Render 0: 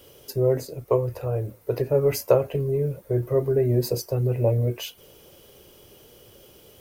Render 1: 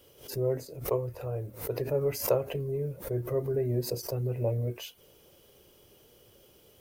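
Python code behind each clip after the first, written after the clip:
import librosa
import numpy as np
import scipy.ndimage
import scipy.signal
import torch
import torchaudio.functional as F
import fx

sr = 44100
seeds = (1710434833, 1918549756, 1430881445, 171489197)

y = fx.pre_swell(x, sr, db_per_s=130.0)
y = y * 10.0 ** (-8.0 / 20.0)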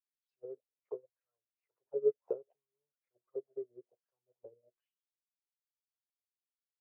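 y = fx.auto_wah(x, sr, base_hz=430.0, top_hz=4900.0, q=7.6, full_db=-25.0, direction='down')
y = fx.upward_expand(y, sr, threshold_db=-52.0, expansion=2.5)
y = y * 10.0 ** (3.0 / 20.0)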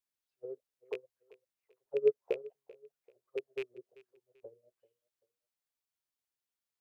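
y = fx.rattle_buzz(x, sr, strikes_db=-51.0, level_db=-34.0)
y = fx.echo_feedback(y, sr, ms=388, feedback_pct=33, wet_db=-21)
y = y * 10.0 ** (2.5 / 20.0)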